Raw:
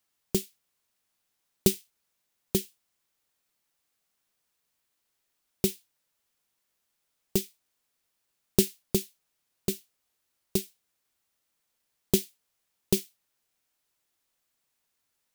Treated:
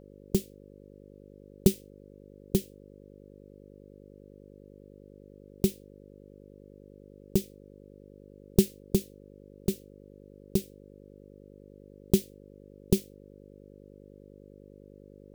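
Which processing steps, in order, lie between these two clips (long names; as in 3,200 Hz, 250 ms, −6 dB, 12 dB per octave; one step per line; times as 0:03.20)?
low-shelf EQ 470 Hz +11 dB
hum with harmonics 50 Hz, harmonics 11, −46 dBFS 0 dB per octave
level −6 dB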